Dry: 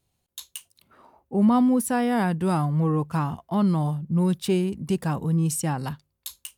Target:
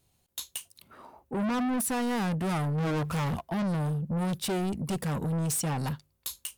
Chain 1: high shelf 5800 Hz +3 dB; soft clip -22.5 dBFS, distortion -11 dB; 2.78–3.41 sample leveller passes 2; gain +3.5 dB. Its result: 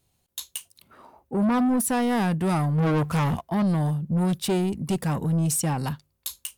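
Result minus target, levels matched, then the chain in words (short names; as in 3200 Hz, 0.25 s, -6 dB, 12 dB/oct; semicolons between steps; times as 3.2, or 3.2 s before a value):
soft clip: distortion -5 dB
high shelf 5800 Hz +3 dB; soft clip -30.5 dBFS, distortion -6 dB; 2.78–3.41 sample leveller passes 2; gain +3.5 dB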